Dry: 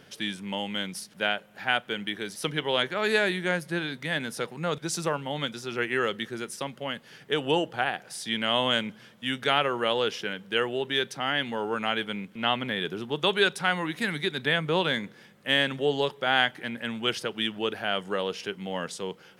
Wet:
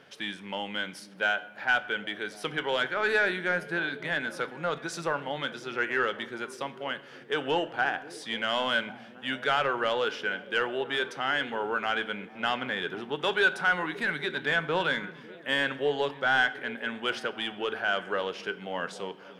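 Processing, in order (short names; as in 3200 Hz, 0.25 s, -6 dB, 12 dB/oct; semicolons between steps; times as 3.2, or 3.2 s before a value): delay with a stepping band-pass 0.273 s, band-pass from 170 Hz, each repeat 0.7 oct, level -11.5 dB; overdrive pedal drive 15 dB, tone 1700 Hz, clips at -6.5 dBFS; reverb RT60 0.85 s, pre-delay 7 ms, DRR 12.5 dB; dynamic EQ 1500 Hz, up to +7 dB, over -41 dBFS, Q 7.8; gain -6.5 dB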